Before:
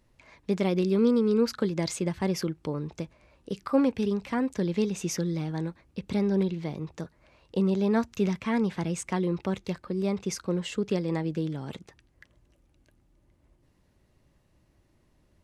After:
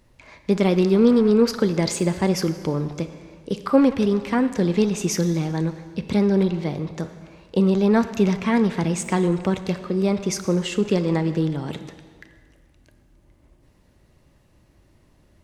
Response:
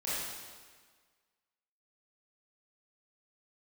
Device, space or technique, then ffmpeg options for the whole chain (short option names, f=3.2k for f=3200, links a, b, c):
saturated reverb return: -filter_complex "[0:a]asplit=2[a][b];[1:a]atrim=start_sample=2205[c];[b][c]afir=irnorm=-1:irlink=0,asoftclip=type=tanh:threshold=-24dB,volume=-12dB[d];[a][d]amix=inputs=2:normalize=0,volume=6.5dB"